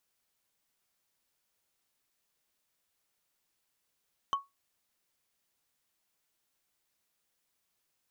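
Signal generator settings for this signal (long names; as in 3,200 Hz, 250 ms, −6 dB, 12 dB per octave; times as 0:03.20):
struck wood, lowest mode 1,110 Hz, decay 0.19 s, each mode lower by 9.5 dB, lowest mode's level −22.5 dB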